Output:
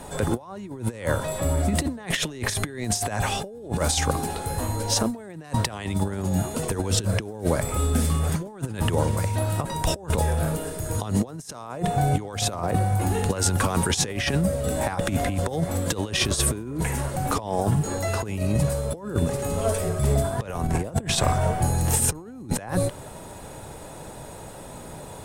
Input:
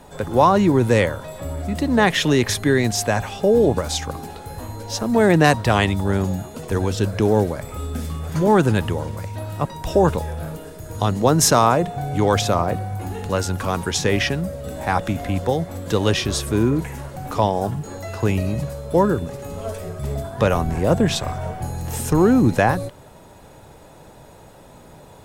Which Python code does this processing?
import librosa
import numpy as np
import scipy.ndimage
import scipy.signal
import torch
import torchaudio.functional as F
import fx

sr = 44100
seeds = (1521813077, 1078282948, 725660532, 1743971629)

y = fx.peak_eq(x, sr, hz=9000.0, db=9.0, octaves=0.49)
y = fx.over_compress(y, sr, threshold_db=-24.0, ratio=-0.5)